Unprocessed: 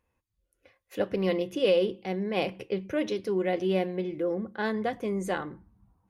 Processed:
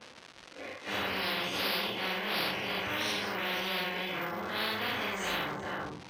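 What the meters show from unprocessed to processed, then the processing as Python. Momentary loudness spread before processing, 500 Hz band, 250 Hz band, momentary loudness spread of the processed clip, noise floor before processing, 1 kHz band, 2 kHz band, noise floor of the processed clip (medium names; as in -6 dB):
8 LU, -11.0 dB, -9.5 dB, 9 LU, -80 dBFS, +1.5 dB, +6.0 dB, -52 dBFS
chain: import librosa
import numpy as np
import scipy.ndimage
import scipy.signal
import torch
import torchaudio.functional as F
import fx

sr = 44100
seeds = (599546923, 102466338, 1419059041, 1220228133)

y = fx.phase_scramble(x, sr, seeds[0], window_ms=200)
y = fx.high_shelf(y, sr, hz=2500.0, db=-10.5)
y = fx.dmg_crackle(y, sr, seeds[1], per_s=360.0, level_db=-54.0)
y = y + 10.0 ** (-18.5 / 20.0) * np.pad(y, (int(392 * sr / 1000.0), 0))[:len(y)]
y = np.repeat(scipy.signal.resample_poly(y, 1, 3), 3)[:len(y)]
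y = fx.bandpass_edges(y, sr, low_hz=170.0, high_hz=5400.0)
y = fx.spectral_comp(y, sr, ratio=10.0)
y = y * librosa.db_to_amplitude(-7.0)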